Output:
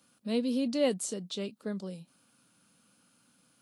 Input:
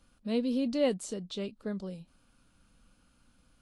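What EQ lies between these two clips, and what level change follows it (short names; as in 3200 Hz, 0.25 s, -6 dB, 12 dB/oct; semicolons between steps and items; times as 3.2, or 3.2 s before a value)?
HPF 130 Hz 24 dB/oct; high shelf 6100 Hz +10 dB; 0.0 dB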